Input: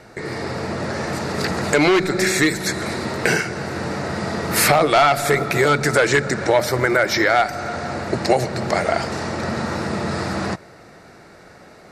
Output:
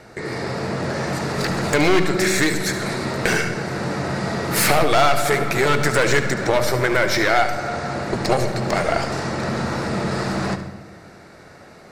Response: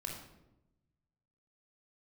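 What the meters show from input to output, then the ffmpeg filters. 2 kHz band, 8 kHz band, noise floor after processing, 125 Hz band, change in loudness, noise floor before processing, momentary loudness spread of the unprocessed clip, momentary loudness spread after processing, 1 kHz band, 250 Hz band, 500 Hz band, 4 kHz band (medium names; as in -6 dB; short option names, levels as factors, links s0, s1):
-1.0 dB, -1.0 dB, -44 dBFS, +1.0 dB, -1.0 dB, -45 dBFS, 11 LU, 9 LU, -1.0 dB, -0.5 dB, -1.0 dB, 0.0 dB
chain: -filter_complex "[0:a]aeval=exprs='clip(val(0),-1,0.106)':c=same,asplit=2[s0][s1];[1:a]atrim=start_sample=2205,adelay=72[s2];[s1][s2]afir=irnorm=-1:irlink=0,volume=0.376[s3];[s0][s3]amix=inputs=2:normalize=0"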